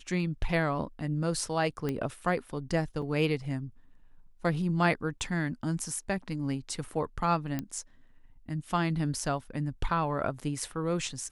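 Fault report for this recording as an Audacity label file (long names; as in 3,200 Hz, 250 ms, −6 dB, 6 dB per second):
1.890000	1.890000	click −19 dBFS
3.020000	3.020000	drop-out 3.4 ms
7.590000	7.590000	click −18 dBFS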